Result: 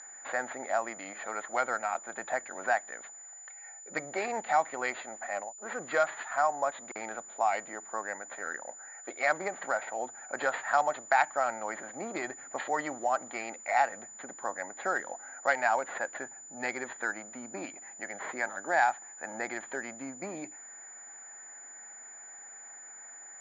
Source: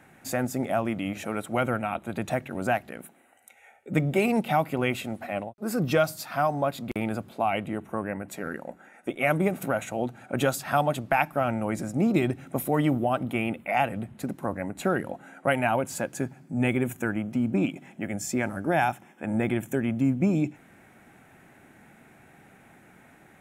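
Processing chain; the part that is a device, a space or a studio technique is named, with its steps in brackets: toy sound module (decimation joined by straight lines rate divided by 6×; class-D stage that switches slowly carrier 7 kHz; cabinet simulation 750–4800 Hz, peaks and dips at 830 Hz +3 dB, 1.8 kHz +7 dB, 2.7 kHz -9 dB, 4.3 kHz +4 dB)

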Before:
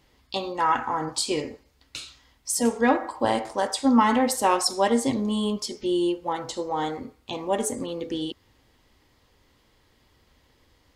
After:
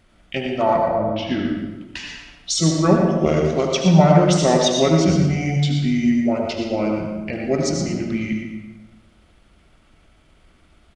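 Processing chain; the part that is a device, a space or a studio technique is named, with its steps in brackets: 0.76–1.45 s: distance through air 190 m; monster voice (pitch shift -6.5 st; bass shelf 130 Hz +4.5 dB; delay 118 ms -9 dB; reverberation RT60 1.1 s, pre-delay 72 ms, DRR 2.5 dB); 2.01–2.60 s: comb 6.9 ms, depth 63%; trim +3.5 dB

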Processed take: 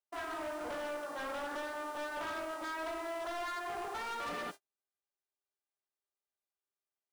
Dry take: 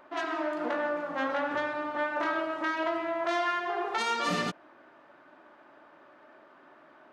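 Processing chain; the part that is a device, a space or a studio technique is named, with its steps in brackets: aircraft radio (band-pass 340–2400 Hz; hard clipper -31.5 dBFS, distortion -9 dB; mains buzz 400 Hz, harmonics 28, -54 dBFS -2 dB/octave; white noise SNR 22 dB; gate -41 dBFS, range -46 dB); trim -5 dB

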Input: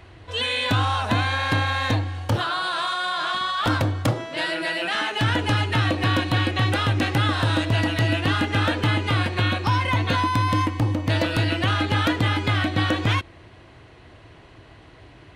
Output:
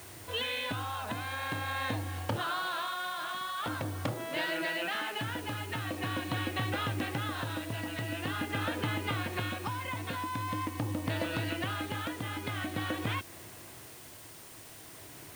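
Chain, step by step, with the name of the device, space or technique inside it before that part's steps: medium wave at night (band-pass 110–3800 Hz; compression, threshold -27 dBFS, peak gain reduction 9.5 dB; tremolo 0.45 Hz, depth 40%; whistle 9 kHz -56 dBFS; white noise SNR 16 dB); trim -2.5 dB

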